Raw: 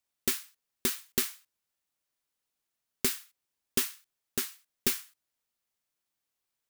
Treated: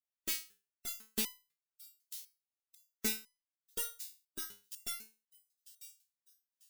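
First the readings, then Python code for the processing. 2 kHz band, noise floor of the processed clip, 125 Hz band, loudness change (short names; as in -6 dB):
-7.5 dB, under -85 dBFS, -13.0 dB, -8.0 dB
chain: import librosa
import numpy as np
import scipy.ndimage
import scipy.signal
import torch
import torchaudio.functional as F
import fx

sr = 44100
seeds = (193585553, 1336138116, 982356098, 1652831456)

y = fx.noise_reduce_blind(x, sr, reduce_db=17)
y = fx.echo_wet_highpass(y, sr, ms=945, feedback_pct=32, hz=4100.0, wet_db=-15.5)
y = fx.resonator_held(y, sr, hz=4.0, low_hz=70.0, high_hz=1000.0)
y = F.gain(torch.from_numpy(y), 8.5).numpy()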